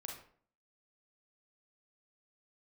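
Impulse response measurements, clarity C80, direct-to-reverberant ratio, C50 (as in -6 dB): 9.0 dB, -0.5 dB, 4.0 dB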